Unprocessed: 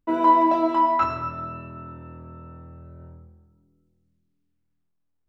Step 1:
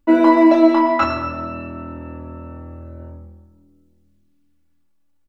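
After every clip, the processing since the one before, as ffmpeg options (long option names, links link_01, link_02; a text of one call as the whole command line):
ffmpeg -i in.wav -af "aecho=1:1:3.5:0.89,volume=7.5dB" out.wav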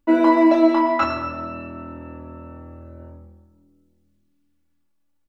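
ffmpeg -i in.wav -af "lowshelf=frequency=150:gain=-4,volume=-2.5dB" out.wav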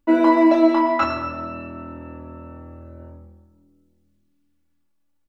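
ffmpeg -i in.wav -af anull out.wav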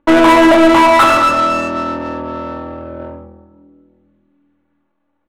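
ffmpeg -i in.wav -filter_complex "[0:a]asplit=2[link_01][link_02];[link_02]highpass=frequency=720:poles=1,volume=25dB,asoftclip=type=tanh:threshold=-4dB[link_03];[link_01][link_03]amix=inputs=2:normalize=0,lowpass=frequency=4700:poles=1,volume=-6dB,asuperstop=centerf=5000:order=4:qfactor=3,adynamicsmooth=sensitivity=1.5:basefreq=1300,volume=3dB" out.wav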